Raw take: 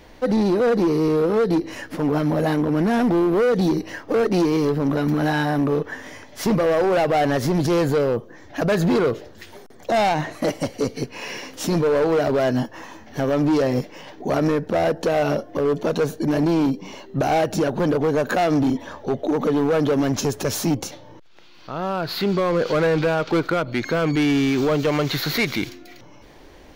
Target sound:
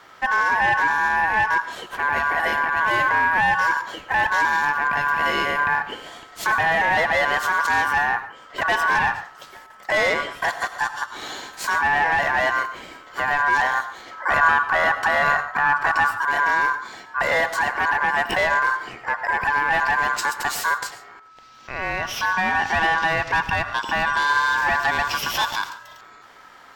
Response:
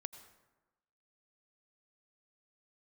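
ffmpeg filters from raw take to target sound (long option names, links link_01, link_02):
-filter_complex "[0:a]asettb=1/sr,asplit=3[link_01][link_02][link_03];[link_01]atrim=end=14.114[link_04];[link_02]atrim=start=14.11:end=16.23,asetpts=PTS-STARTPTS,afade=type=in:duration=0.004:curve=qsin,afade=type=out:start_time=2.116:duration=0.004:curve=qsin,bass=frequency=250:gain=10,treble=frequency=4000:gain=-1[link_05];[link_03]atrim=start=16.226[link_06];[link_04][link_05]acrossfade=duration=0.004:curve1=hsin:curve2=qsin[link_07];[link_07][link_06]acrossfade=duration=0.004:curve1=qsin:curve2=hsin,aeval=exprs='val(0)*sin(2*PI*1300*n/s)':channel_layout=same[link_08];[1:a]atrim=start_sample=2205,afade=type=out:start_time=0.2:duration=0.01,atrim=end_sample=9261[link_09];[link_08][link_09]afir=irnorm=-1:irlink=0,volume=5.5dB"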